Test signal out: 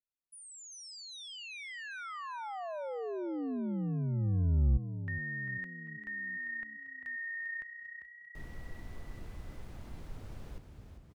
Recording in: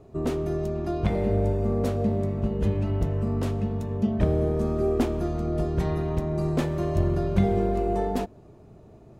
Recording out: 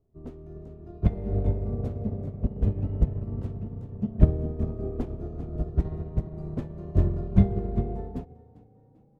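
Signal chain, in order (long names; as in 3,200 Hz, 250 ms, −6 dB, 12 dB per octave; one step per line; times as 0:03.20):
spectral tilt −3 dB per octave
on a send: echo with shifted repeats 396 ms, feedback 54%, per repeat +31 Hz, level −8.5 dB
on the sum: expander for the loud parts 2.5 to 1, over −24 dBFS
level −3 dB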